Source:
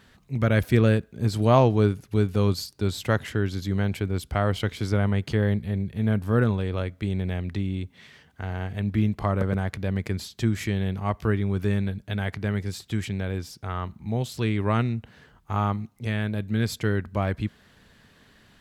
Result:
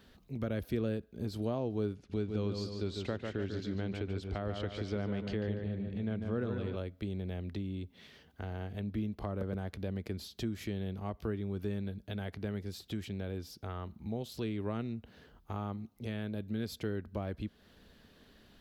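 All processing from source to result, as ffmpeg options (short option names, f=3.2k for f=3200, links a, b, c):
-filter_complex "[0:a]asettb=1/sr,asplit=3[a][b][c];[a]atrim=end=1.954[d];[b]atrim=start=1.95:end=6.76,asetpts=PTS-STARTPTS,afade=t=in:d=0.004:c=qsin,afade=t=out:st=4.806:d=0.004:c=qsin,lowpass=f=7.7k:w=0.5412,lowpass=f=7.7k:w=1.3066,equalizer=f=2.2k:w=1.6:g=4,asplit=2[e][f];[f]adelay=145,lowpass=f=3.9k:p=1,volume=-6dB,asplit=2[g][h];[h]adelay=145,lowpass=f=3.9k:p=1,volume=0.46,asplit=2[i][j];[j]adelay=145,lowpass=f=3.9k:p=1,volume=0.46,asplit=2[k][l];[l]adelay=145,lowpass=f=3.9k:p=1,volume=0.46,asplit=2[m][n];[n]adelay=145,lowpass=f=3.9k:p=1,volume=0.46,asplit=2[o][p];[p]adelay=145,lowpass=f=3.9k:p=1,volume=0.46[q];[e][g][i][k][m][o][q]amix=inputs=7:normalize=0,atrim=end_sample=212121[r];[c]atrim=start=6.756[s];[d][r]acrossfade=d=0.004:c1=hsin:c2=qsin[t];[t][s]acrossfade=d=0.004:c1=qsin:c2=hsin,acompressor=threshold=-34dB:ratio=2,equalizer=f=125:t=o:w=1:g=-9,equalizer=f=1k:t=o:w=1:g=-6,equalizer=f=2k:t=o:w=1:g=-8,equalizer=f=8k:t=o:w=1:g=-10,acrossover=split=470[u][v];[v]acompressor=threshold=-38dB:ratio=6[w];[u][w]amix=inputs=2:normalize=0"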